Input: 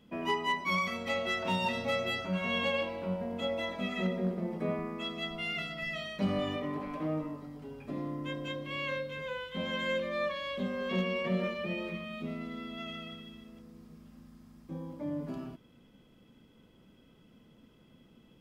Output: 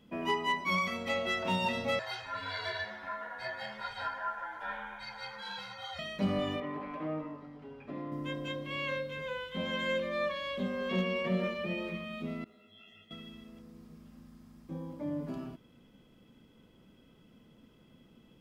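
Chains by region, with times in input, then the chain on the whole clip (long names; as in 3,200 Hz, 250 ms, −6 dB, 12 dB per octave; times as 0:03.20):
0:01.99–0:05.99: ring modulation 1,200 Hz + string-ensemble chorus
0:06.60–0:08.12: low-pass filter 2,400 Hz + spectral tilt +2 dB per octave
0:12.44–0:13.11: noise that follows the level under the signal 35 dB + stiff-string resonator 100 Hz, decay 0.43 s, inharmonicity 0.002 + micro pitch shift up and down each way 60 cents
whole clip: no processing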